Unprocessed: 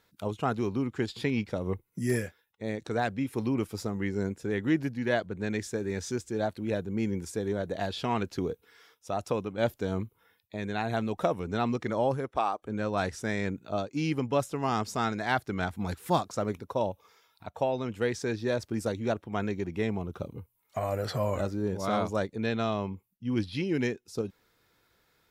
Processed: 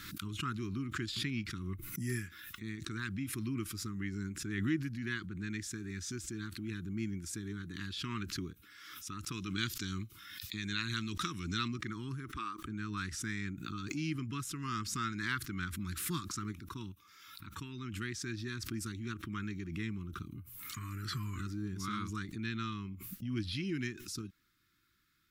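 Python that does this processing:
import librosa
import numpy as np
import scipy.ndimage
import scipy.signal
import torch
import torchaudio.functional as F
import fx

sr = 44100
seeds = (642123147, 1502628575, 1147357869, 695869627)

y = fx.peak_eq(x, sr, hz=5000.0, db=13.5, octaves=1.8, at=(9.32, 11.68))
y = scipy.signal.sosfilt(scipy.signal.ellip(3, 1.0, 50, [330.0, 1200.0], 'bandstop', fs=sr, output='sos'), y)
y = fx.dynamic_eq(y, sr, hz=260.0, q=2.1, threshold_db=-42.0, ratio=4.0, max_db=-4)
y = fx.pre_swell(y, sr, db_per_s=38.0)
y = F.gain(torch.from_numpy(y), -5.0).numpy()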